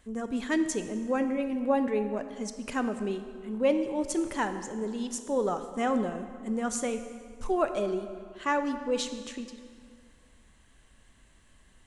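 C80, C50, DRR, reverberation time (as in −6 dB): 10.5 dB, 9.5 dB, 8.5 dB, 2.1 s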